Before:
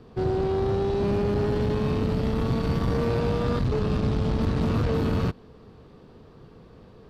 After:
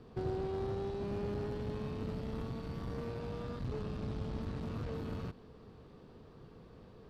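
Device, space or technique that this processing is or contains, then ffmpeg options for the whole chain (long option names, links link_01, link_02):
de-esser from a sidechain: -filter_complex "[0:a]asplit=2[link_01][link_02];[link_02]highpass=4700,apad=whole_len=313003[link_03];[link_01][link_03]sidechaincompress=threshold=-57dB:ratio=8:attack=1.8:release=38,volume=-6dB"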